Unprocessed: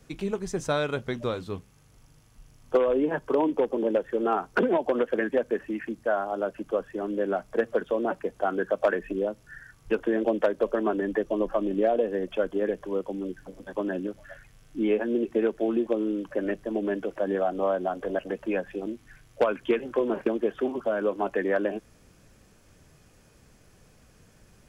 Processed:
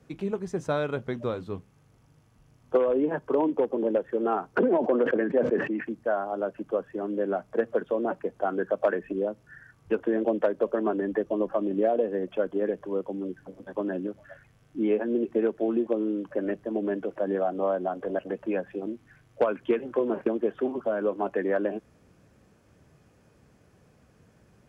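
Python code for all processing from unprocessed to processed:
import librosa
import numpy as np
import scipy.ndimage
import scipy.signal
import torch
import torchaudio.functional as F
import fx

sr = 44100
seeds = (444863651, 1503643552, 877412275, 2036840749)

y = fx.chain(x, sr, fx.bandpass_edges(low_hz=200.0, high_hz=4200.0),
    fx.tilt_shelf(db=3.0, hz=780.0),
    fx.sustainer(db_per_s=65.0), at=(4.58, 5.84))
y = scipy.signal.sosfilt(scipy.signal.butter(2, 75.0, 'highpass', fs=sr, output='sos'), y)
y = fx.high_shelf(y, sr, hz=2400.0, db=-11.0)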